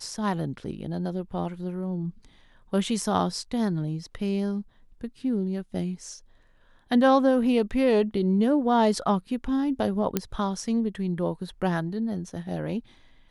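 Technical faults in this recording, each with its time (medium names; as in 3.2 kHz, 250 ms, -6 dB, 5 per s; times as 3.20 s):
10.17 s: pop -9 dBFS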